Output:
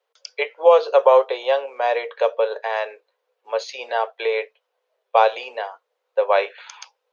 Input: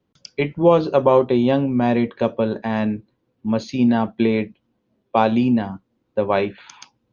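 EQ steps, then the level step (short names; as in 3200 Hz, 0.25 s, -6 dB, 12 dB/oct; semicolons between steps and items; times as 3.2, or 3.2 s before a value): Chebyshev high-pass 450 Hz, order 6; +3.0 dB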